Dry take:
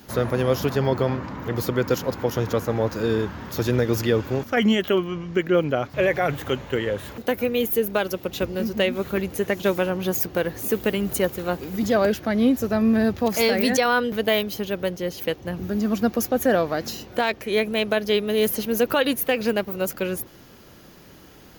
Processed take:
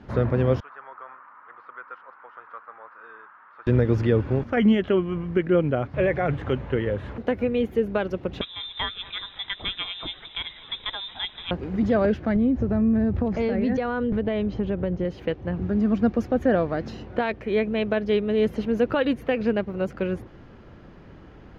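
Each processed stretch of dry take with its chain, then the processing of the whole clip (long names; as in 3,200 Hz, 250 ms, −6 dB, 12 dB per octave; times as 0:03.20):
0:00.60–0:03.67: four-pole ladder band-pass 1,400 Hz, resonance 60% + high-frequency loss of the air 150 metres
0:08.41–0:11.51: voice inversion scrambler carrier 3,800 Hz + repeating echo 216 ms, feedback 56%, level −20.5 dB
0:12.36–0:15.05: spectral tilt −2 dB per octave + downward compressor 2.5 to 1, threshold −22 dBFS + linear-phase brick-wall low-pass 7,100 Hz
whole clip: dynamic equaliser 1,000 Hz, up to −4 dB, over −31 dBFS, Q 0.72; low-pass filter 2,000 Hz 12 dB per octave; low-shelf EQ 100 Hz +10 dB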